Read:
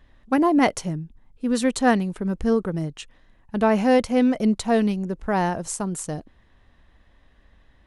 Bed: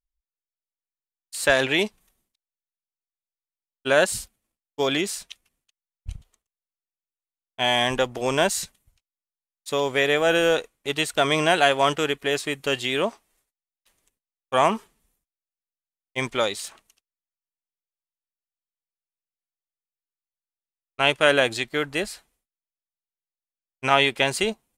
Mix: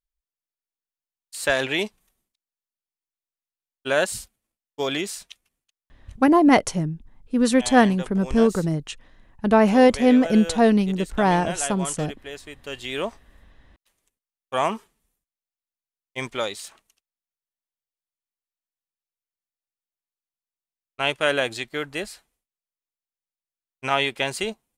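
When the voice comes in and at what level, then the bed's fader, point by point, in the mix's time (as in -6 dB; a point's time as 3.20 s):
5.90 s, +3.0 dB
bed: 5.74 s -2.5 dB
6.49 s -13 dB
12.58 s -13 dB
12.99 s -3.5 dB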